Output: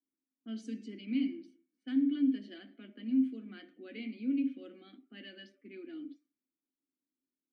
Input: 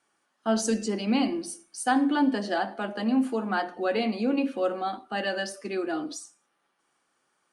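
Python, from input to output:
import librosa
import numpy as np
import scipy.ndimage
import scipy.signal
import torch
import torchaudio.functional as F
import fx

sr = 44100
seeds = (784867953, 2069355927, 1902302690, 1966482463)

y = fx.env_lowpass(x, sr, base_hz=500.0, full_db=-23.5)
y = fx.vowel_filter(y, sr, vowel='i')
y = y * 10.0 ** (-3.0 / 20.0)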